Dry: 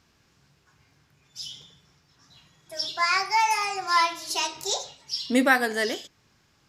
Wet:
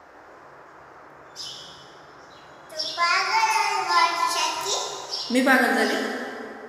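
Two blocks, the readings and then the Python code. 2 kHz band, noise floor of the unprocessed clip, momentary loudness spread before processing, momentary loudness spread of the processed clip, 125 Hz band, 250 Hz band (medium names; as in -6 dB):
+3.0 dB, -65 dBFS, 16 LU, 17 LU, no reading, +2.5 dB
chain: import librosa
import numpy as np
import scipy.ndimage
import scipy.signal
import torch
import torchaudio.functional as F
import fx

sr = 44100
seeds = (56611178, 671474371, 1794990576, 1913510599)

y = fx.dmg_noise_band(x, sr, seeds[0], low_hz=290.0, high_hz=1600.0, level_db=-50.0)
y = fx.rev_plate(y, sr, seeds[1], rt60_s=2.7, hf_ratio=0.55, predelay_ms=0, drr_db=0.5)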